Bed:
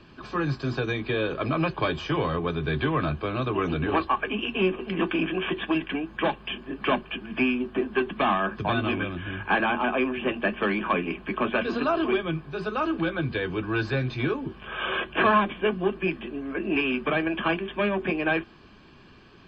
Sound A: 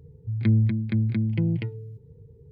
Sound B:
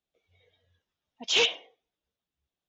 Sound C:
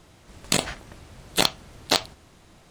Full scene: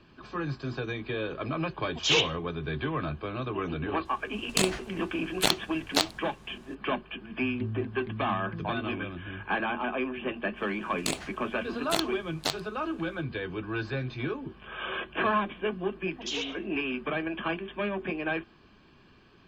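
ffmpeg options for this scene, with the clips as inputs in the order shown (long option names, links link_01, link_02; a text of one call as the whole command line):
ffmpeg -i bed.wav -i cue0.wav -i cue1.wav -i cue2.wav -filter_complex "[2:a]asplit=2[link_01][link_02];[3:a]asplit=2[link_03][link_04];[0:a]volume=-6dB[link_05];[link_02]acompressor=threshold=-30dB:ratio=6:attack=3.2:release=140:knee=1:detection=peak[link_06];[link_01]atrim=end=2.68,asetpts=PTS-STARTPTS,volume=-0.5dB,afade=type=in:duration=0.004:curve=hsin,afade=type=out:start_time=2.676:duration=0.004:curve=hsin,adelay=750[link_07];[link_03]atrim=end=2.7,asetpts=PTS-STARTPTS,volume=-4dB,afade=type=in:duration=0.004:curve=hsin,afade=type=out:start_time=2.696:duration=0.004:curve=hsin,adelay=178605S[link_08];[1:a]atrim=end=2.51,asetpts=PTS-STARTPTS,volume=-15dB,afade=type=in:duration=0.004:curve=hsin,afade=type=out:start_time=2.506:duration=0.004:curve=hsin,adelay=7150[link_09];[link_04]atrim=end=2.7,asetpts=PTS-STARTPTS,volume=-9dB,afade=type=in:duration=0.05,afade=type=out:start_time=2.65:duration=0.05,adelay=10540[link_10];[link_06]atrim=end=2.68,asetpts=PTS-STARTPTS,volume=-1dB,afade=type=in:duration=0.004:curve=hsin,afade=type=out:start_time=2.676:duration=0.004:curve=hsin,adelay=14980[link_11];[link_05][link_07][link_08][link_09][link_10][link_11]amix=inputs=6:normalize=0" out.wav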